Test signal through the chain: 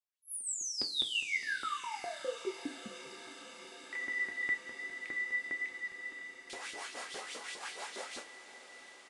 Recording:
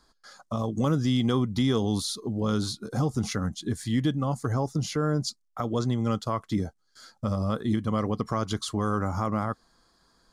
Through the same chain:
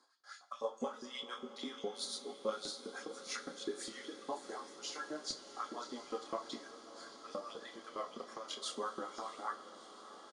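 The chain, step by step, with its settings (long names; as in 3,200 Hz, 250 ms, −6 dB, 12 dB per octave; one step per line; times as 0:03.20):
high-pass filter 190 Hz 24 dB per octave
downward compressor, threshold −30 dBFS
multi-voice chorus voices 4, 0.21 Hz, delay 27 ms, depth 2.8 ms
auto-filter high-pass saw up 4.9 Hz 310–4,400 Hz
flanger 0.52 Hz, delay 0.9 ms, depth 8.2 ms, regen −58%
amplitude tremolo 6 Hz, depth 61%
on a send: feedback delay with all-pass diffusion 677 ms, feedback 80%, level −14.5 dB
on the sum: coupled-rooms reverb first 0.25 s, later 4.1 s, from −21 dB, DRR 5.5 dB
downsampling to 22,050 Hz
level +1.5 dB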